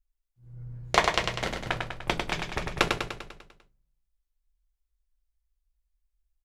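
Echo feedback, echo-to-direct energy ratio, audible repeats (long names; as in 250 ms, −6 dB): 57%, −3.0 dB, 7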